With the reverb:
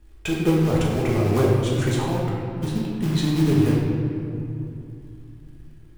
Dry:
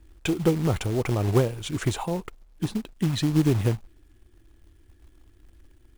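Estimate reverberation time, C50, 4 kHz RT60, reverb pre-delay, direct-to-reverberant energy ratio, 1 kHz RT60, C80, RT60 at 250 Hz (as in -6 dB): 2.7 s, -0.5 dB, 1.5 s, 5 ms, -5.5 dB, 2.6 s, 1.5 dB, 3.6 s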